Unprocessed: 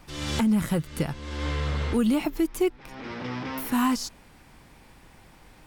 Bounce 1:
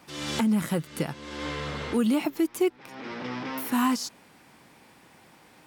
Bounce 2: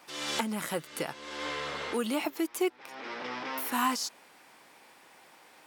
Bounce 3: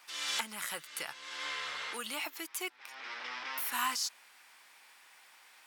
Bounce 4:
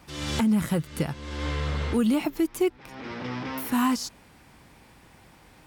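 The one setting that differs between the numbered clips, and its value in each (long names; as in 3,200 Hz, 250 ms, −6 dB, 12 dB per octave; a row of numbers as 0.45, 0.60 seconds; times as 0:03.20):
high-pass filter, corner frequency: 170, 450, 1,300, 53 Hertz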